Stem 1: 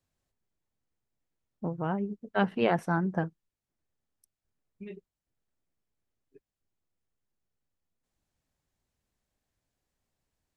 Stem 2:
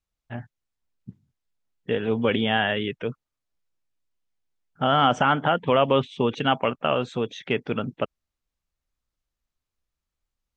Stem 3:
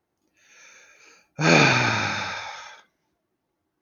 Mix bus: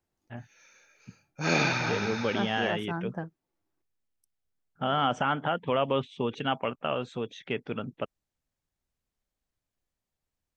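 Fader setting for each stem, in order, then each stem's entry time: -6.0 dB, -7.0 dB, -9.0 dB; 0.00 s, 0.00 s, 0.00 s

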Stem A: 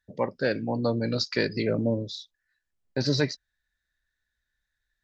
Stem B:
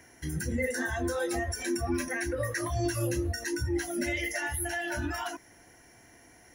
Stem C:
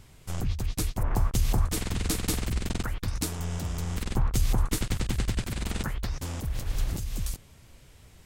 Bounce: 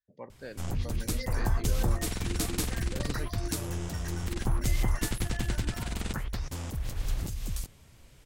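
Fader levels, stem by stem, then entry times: -17.0 dB, -11.0 dB, -2.5 dB; 0.00 s, 0.60 s, 0.30 s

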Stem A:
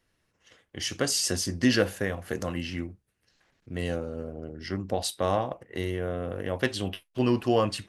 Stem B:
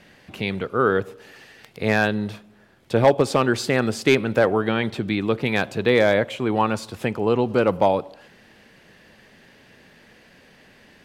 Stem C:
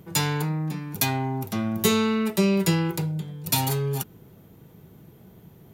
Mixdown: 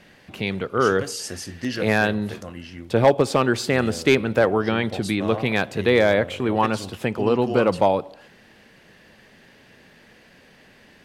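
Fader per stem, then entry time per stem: -5.0 dB, 0.0 dB, mute; 0.00 s, 0.00 s, mute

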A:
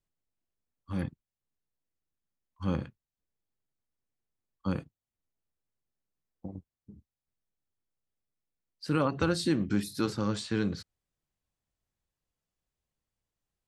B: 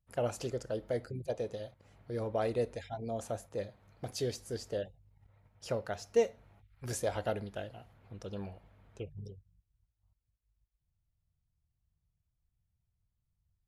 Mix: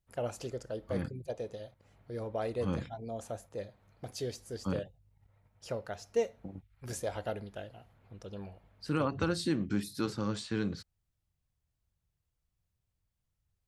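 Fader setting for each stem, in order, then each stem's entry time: -3.5 dB, -2.5 dB; 0.00 s, 0.00 s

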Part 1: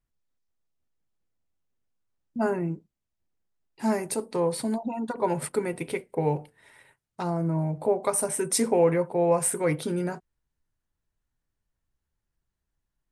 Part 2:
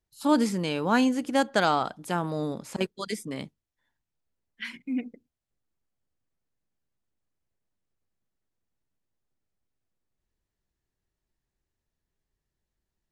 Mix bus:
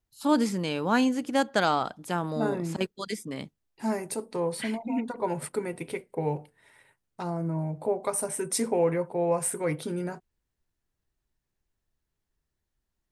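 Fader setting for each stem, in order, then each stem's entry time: -3.5 dB, -1.0 dB; 0.00 s, 0.00 s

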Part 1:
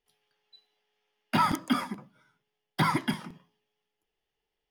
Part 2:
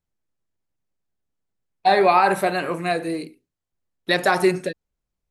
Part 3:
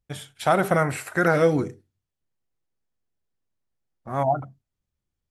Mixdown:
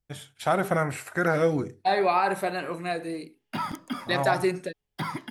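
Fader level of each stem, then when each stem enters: -6.5 dB, -7.0 dB, -4.0 dB; 2.20 s, 0.00 s, 0.00 s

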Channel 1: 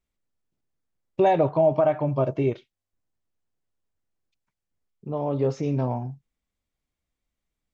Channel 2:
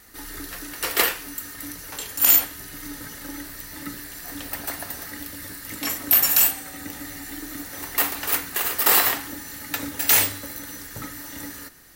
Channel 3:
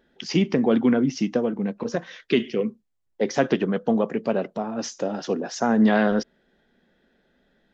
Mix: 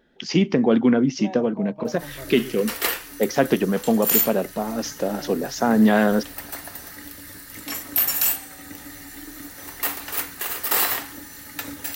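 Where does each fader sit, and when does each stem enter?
-17.0 dB, -3.5 dB, +2.0 dB; 0.00 s, 1.85 s, 0.00 s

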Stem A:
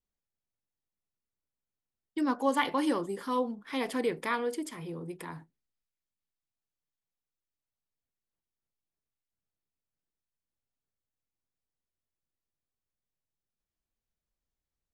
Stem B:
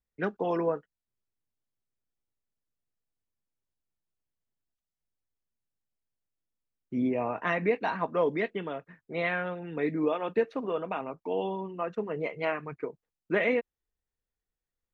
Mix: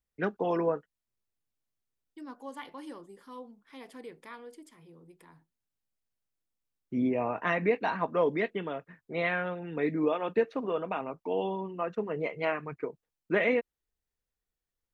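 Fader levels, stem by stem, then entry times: -15.0 dB, 0.0 dB; 0.00 s, 0.00 s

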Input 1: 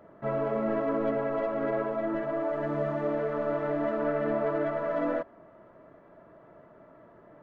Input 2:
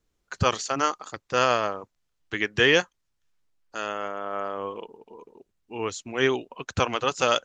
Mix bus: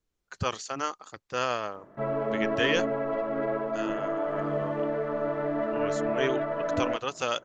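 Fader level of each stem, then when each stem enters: 0.0 dB, -7.0 dB; 1.75 s, 0.00 s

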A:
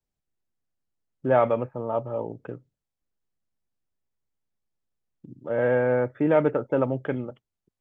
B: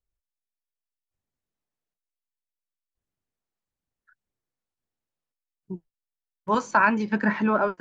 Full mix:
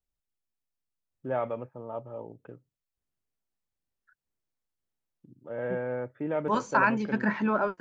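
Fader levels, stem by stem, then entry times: -10.0 dB, -4.0 dB; 0.00 s, 0.00 s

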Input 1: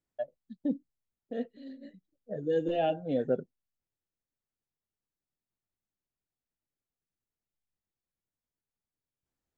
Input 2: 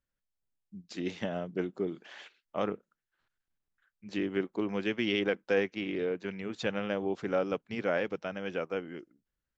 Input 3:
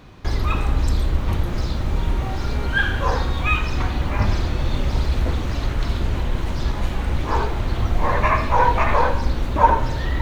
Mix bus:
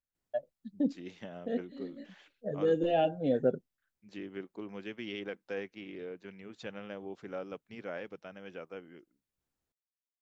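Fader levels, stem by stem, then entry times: +1.0 dB, -10.5 dB, mute; 0.15 s, 0.00 s, mute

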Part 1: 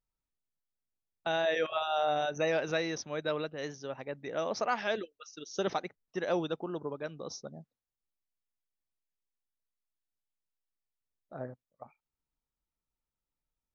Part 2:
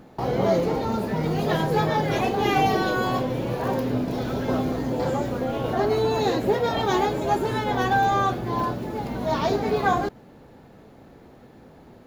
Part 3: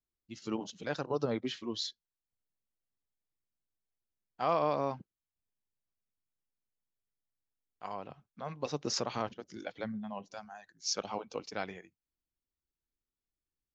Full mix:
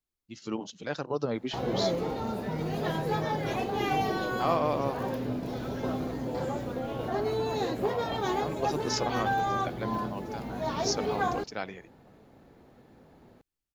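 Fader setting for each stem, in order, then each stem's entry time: -17.5 dB, -7.5 dB, +2.0 dB; 0.25 s, 1.35 s, 0.00 s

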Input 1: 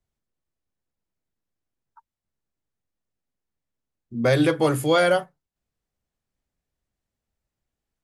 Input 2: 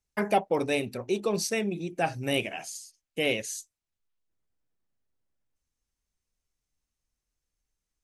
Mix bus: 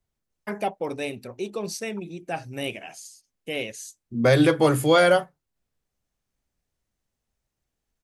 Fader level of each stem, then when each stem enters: +1.5 dB, -3.0 dB; 0.00 s, 0.30 s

